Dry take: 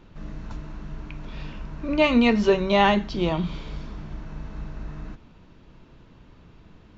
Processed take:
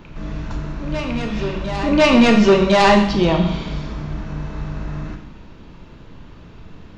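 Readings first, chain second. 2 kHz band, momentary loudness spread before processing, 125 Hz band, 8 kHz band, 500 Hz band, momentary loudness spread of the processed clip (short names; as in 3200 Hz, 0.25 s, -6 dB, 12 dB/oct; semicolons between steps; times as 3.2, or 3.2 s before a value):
+6.5 dB, 20 LU, +9.0 dB, n/a, +7.0 dB, 18 LU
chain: sine folder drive 7 dB, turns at -5.5 dBFS; reverse echo 1.055 s -13.5 dB; Schroeder reverb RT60 0.8 s, combs from 27 ms, DRR 4.5 dB; gain -2.5 dB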